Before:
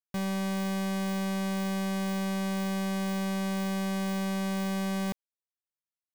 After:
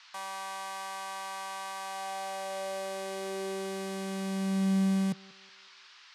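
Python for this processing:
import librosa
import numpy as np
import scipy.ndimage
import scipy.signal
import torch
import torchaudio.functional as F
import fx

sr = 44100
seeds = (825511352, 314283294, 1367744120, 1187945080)

y = scipy.signal.sosfilt(scipy.signal.butter(4, 11000.0, 'lowpass', fs=sr, output='sos'), x)
y = fx.high_shelf(y, sr, hz=6600.0, db=7.5)
y = fx.echo_banded(y, sr, ms=184, feedback_pct=54, hz=500.0, wet_db=-18.5)
y = fx.filter_sweep_highpass(y, sr, from_hz=930.0, to_hz=120.0, start_s=1.77, end_s=5.65, q=3.8)
y = fx.dmg_noise_band(y, sr, seeds[0], low_hz=1000.0, high_hz=5100.0, level_db=-50.0)
y = F.gain(torch.from_numpy(y), -5.5).numpy()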